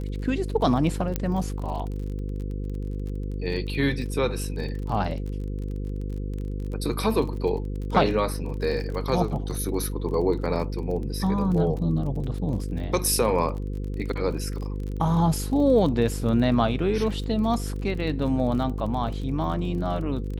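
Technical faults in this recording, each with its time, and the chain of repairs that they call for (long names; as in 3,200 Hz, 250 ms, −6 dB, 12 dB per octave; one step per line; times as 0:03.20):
mains buzz 50 Hz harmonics 10 −30 dBFS
surface crackle 32 per second −33 dBFS
0:01.16: click −11 dBFS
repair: click removal
hum removal 50 Hz, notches 10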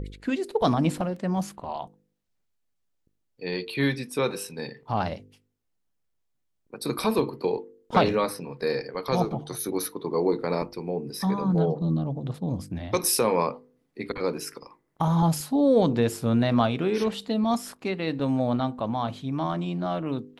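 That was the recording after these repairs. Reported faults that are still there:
0:01.16: click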